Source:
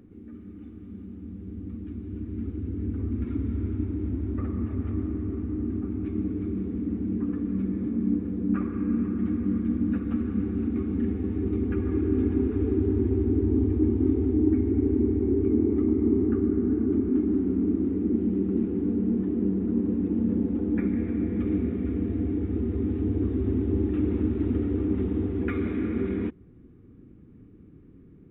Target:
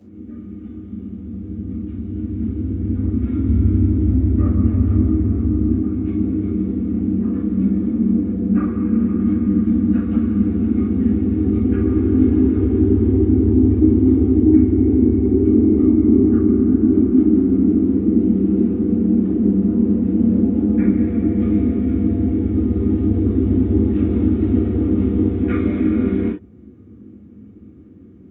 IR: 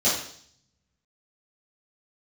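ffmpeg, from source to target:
-filter_complex "[0:a]asettb=1/sr,asplit=3[a][b][c];[a]atrim=end=3.464[d];[b]atrim=start=3.46:end=5.74,asetpts=PTS-STARTPTS,afade=t=in:d=0.004:c=qsin,afade=t=out:st=2.276:d=0.004:c=qsin,lowshelf=f=170:g=7[e];[c]atrim=start=5.736[f];[d][e]acrossfade=d=0.004:c1=hsin:c2=qsin[g];[g][f]acrossfade=d=0.004:c1=qsin:c2=hsin[h];[1:a]atrim=start_sample=2205,atrim=end_sample=3969[i];[h][i]afir=irnorm=-1:irlink=0,volume=-7.5dB"

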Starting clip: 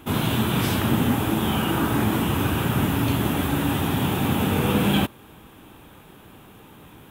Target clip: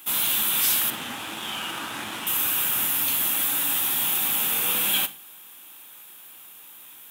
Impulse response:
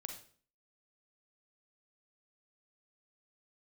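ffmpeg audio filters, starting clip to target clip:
-filter_complex "[0:a]asettb=1/sr,asplit=3[a][b][c];[a]atrim=end=0.904[d];[b]atrim=start=0.9:end=2.27,asetpts=PTS-STARTPTS,afade=t=in:d=0.004:c=qsin,afade=t=out:st=1.366:d=0.004:c=qsin,adynamicsmooth=sensitivity=2:basefreq=4k[e];[c]atrim=start=2.266[f];[d][e]acrossfade=d=0.004:c1=hsin:c2=qsin[g];[g][f]acrossfade=d=0.004:c1=qsin:c2=hsin,aderivative,bandreject=f=420:w=12,asplit=2[h][i];[1:a]atrim=start_sample=2205,asetrate=52920,aresample=44100[j];[i][j]afir=irnorm=-1:irlink=0,volume=-2.5dB[k];[h][k]amix=inputs=2:normalize=0,volume=7dB"

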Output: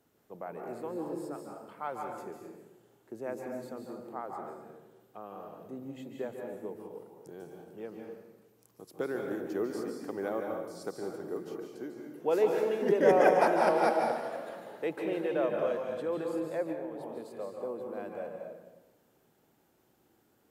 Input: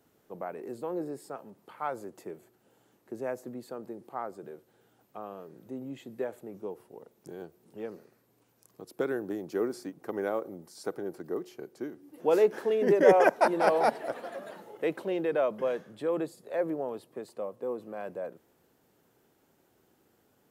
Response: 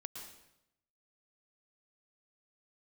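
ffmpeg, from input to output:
-filter_complex "[1:a]atrim=start_sample=2205,asetrate=33075,aresample=44100[a];[0:a][a]afir=irnorm=-1:irlink=0,asettb=1/sr,asplit=3[b][c][d];[b]atrim=end=16.724[e];[c]atrim=start=16.72:end=17.35,asetpts=PTS-STARTPTS,afade=t=in:d=0.004:c=qsin,afade=t=out:st=0.626:d=0.004:c=qsin,acompressor=threshold=-35dB:ratio=6[f];[d]atrim=start=17.346[g];[e][f]acrossfade=d=0.004:c1=hsin:c2=qsin[h];[h][g]acrossfade=d=0.004:c1=qsin:c2=hsin"

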